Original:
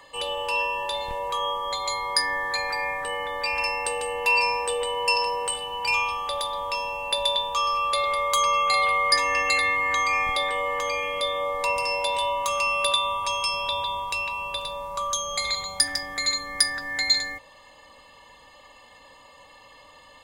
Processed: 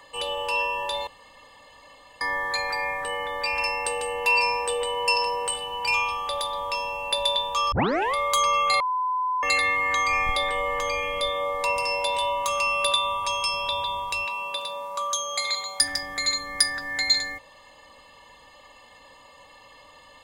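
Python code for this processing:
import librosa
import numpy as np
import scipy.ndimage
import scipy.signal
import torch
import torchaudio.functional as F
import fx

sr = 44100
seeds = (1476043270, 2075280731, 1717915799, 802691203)

y = fx.low_shelf(x, sr, hz=86.0, db=11.0, at=(10.07, 11.3))
y = fx.highpass(y, sr, hz=fx.line((14.25, 190.0), (15.79, 410.0)), slope=12, at=(14.25, 15.79), fade=0.02)
y = fx.edit(y, sr, fx.room_tone_fill(start_s=1.07, length_s=1.14),
    fx.tape_start(start_s=7.72, length_s=0.42),
    fx.bleep(start_s=8.8, length_s=0.63, hz=1010.0, db=-22.5), tone=tone)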